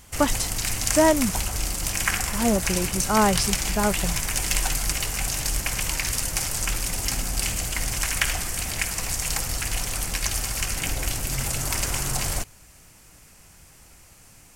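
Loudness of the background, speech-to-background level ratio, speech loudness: −25.5 LKFS, 1.0 dB, −24.5 LKFS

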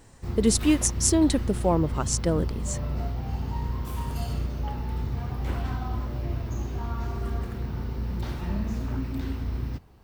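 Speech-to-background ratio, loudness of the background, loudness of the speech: 7.5 dB, −32.0 LKFS, −24.5 LKFS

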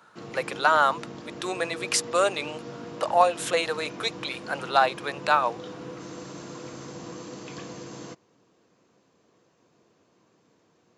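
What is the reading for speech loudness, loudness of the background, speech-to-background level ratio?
−25.5 LKFS, −40.0 LKFS, 14.5 dB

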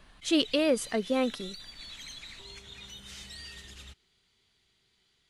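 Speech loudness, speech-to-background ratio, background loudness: −28.0 LKFS, 16.0 dB, −44.0 LKFS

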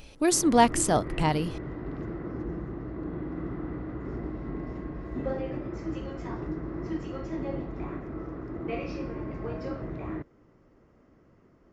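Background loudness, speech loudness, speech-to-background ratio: −36.0 LKFS, −24.0 LKFS, 12.0 dB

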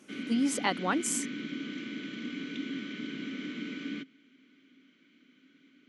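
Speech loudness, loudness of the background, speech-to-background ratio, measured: −30.5 LKFS, −38.5 LKFS, 8.0 dB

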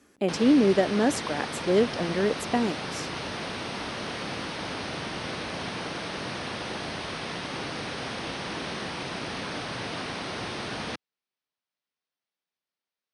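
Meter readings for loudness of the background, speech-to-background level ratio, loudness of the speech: −33.5 LKFS, 8.5 dB, −25.0 LKFS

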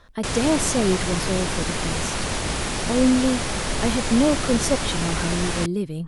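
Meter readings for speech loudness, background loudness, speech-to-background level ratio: −24.0 LKFS, −25.5 LKFS, 1.5 dB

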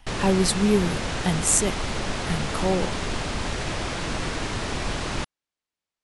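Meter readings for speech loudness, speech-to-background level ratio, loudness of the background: −24.0 LKFS, 5.0 dB, −29.0 LKFS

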